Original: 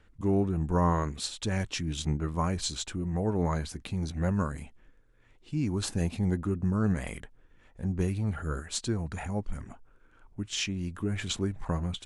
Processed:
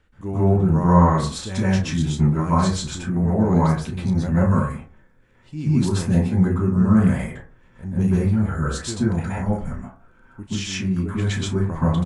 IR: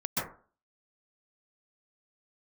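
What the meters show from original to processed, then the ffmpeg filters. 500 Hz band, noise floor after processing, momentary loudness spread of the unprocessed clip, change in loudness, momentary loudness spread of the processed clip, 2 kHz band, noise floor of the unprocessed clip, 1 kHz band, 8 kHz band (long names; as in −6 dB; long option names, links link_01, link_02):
+8.5 dB, −54 dBFS, 9 LU, +10.5 dB, 12 LU, +7.5 dB, −60 dBFS, +10.5 dB, +3.5 dB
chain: -filter_complex "[0:a]asplit=2[link_01][link_02];[link_02]adelay=32,volume=-10.5dB[link_03];[link_01][link_03]amix=inputs=2:normalize=0[link_04];[1:a]atrim=start_sample=2205[link_05];[link_04][link_05]afir=irnorm=-1:irlink=0"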